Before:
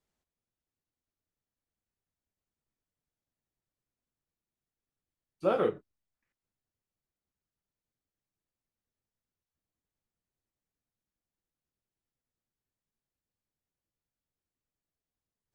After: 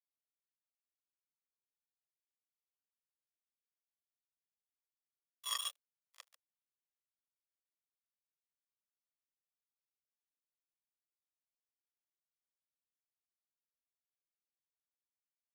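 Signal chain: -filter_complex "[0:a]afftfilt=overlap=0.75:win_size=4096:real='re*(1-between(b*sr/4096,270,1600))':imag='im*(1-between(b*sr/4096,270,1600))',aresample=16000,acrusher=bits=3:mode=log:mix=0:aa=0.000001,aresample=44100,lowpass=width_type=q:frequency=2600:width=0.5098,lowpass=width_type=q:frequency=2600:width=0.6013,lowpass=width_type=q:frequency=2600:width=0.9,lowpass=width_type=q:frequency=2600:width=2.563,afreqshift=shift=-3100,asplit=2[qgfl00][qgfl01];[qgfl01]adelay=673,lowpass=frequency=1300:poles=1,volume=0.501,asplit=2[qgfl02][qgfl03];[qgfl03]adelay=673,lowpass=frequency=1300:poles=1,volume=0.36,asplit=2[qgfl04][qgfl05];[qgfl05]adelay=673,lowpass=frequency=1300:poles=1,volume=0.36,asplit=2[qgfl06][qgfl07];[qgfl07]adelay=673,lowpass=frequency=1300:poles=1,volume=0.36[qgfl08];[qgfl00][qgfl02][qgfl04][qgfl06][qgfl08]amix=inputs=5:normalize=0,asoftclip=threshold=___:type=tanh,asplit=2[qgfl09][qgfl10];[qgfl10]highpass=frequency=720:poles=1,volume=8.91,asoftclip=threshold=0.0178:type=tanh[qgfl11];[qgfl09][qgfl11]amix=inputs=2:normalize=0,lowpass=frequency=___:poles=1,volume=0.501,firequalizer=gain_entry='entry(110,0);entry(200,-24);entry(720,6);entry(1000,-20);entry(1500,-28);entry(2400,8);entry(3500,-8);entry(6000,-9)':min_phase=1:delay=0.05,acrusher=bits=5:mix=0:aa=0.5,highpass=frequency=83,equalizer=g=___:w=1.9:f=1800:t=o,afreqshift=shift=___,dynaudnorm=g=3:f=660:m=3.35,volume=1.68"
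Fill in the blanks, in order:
0.0178, 1900, 3, 440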